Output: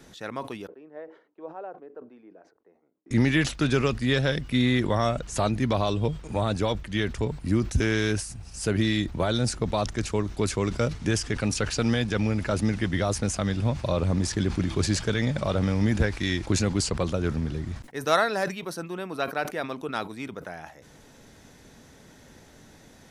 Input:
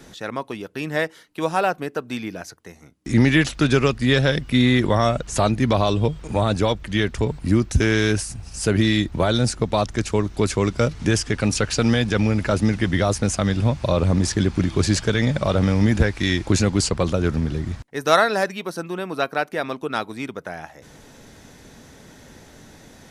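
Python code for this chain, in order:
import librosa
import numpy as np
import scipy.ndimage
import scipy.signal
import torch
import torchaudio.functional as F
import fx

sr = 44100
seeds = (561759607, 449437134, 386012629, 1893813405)

y = fx.ladder_bandpass(x, sr, hz=530.0, resonance_pct=25, at=(0.67, 3.11))
y = fx.sustainer(y, sr, db_per_s=130.0)
y = F.gain(torch.from_numpy(y), -6.0).numpy()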